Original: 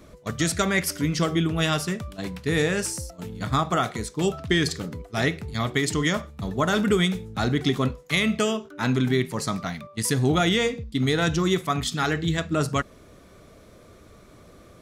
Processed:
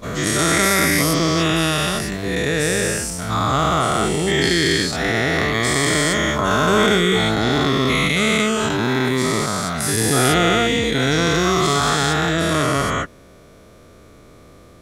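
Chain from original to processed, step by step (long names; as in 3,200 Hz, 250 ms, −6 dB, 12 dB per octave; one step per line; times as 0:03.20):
every bin's largest magnitude spread in time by 480 ms
level −2 dB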